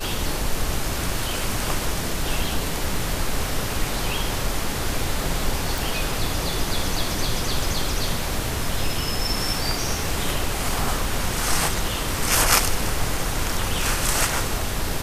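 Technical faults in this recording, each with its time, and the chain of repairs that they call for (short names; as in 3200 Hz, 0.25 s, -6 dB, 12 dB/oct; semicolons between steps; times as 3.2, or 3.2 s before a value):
5.78 pop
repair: de-click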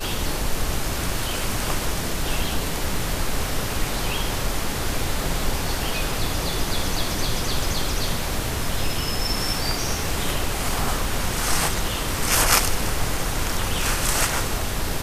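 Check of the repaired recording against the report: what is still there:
none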